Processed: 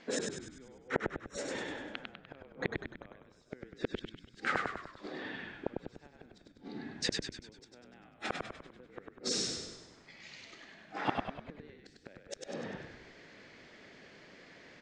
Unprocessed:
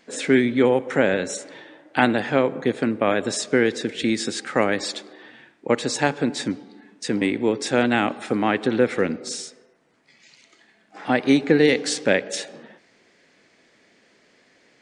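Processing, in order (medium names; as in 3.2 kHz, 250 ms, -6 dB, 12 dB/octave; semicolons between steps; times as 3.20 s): inverted gate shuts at -18 dBFS, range -41 dB; Bessel low-pass 4.8 kHz, order 4; on a send: frequency-shifting echo 99 ms, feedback 50%, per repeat -51 Hz, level -3.5 dB; on the sum: trim +1.5 dB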